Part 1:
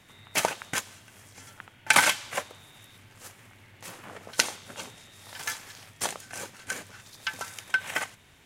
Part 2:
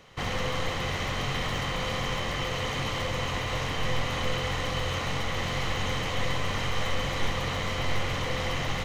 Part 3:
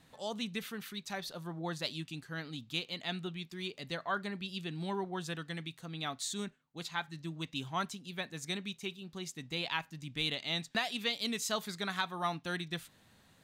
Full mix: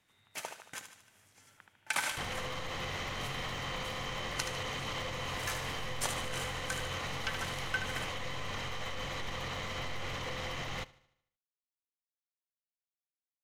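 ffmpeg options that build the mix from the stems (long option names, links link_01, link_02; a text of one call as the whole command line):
ffmpeg -i stem1.wav -i stem2.wav -filter_complex "[0:a]dynaudnorm=framelen=130:gausssize=13:maxgain=12.5dB,volume=-16dB,asplit=2[link_01][link_02];[link_02]volume=-9dB[link_03];[1:a]alimiter=level_in=3.5dB:limit=-24dB:level=0:latency=1:release=139,volume=-3.5dB,adelay=2000,volume=0dB,asplit=2[link_04][link_05];[link_05]volume=-21dB[link_06];[link_03][link_06]amix=inputs=2:normalize=0,aecho=0:1:75|150|225|300|375|450|525:1|0.5|0.25|0.125|0.0625|0.0312|0.0156[link_07];[link_01][link_04][link_07]amix=inputs=3:normalize=0,lowshelf=frequency=430:gain=-4" out.wav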